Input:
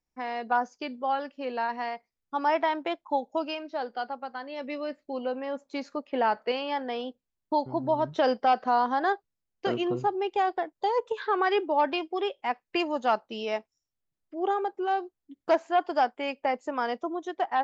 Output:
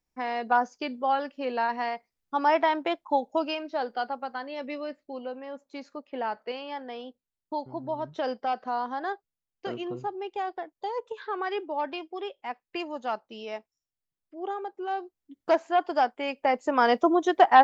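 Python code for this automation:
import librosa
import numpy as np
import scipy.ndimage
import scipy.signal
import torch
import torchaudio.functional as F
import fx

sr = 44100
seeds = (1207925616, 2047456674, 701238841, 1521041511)

y = fx.gain(x, sr, db=fx.line((4.37, 2.5), (5.38, -6.0), (14.62, -6.0), (15.5, 0.5), (16.29, 0.5), (17.04, 10.5)))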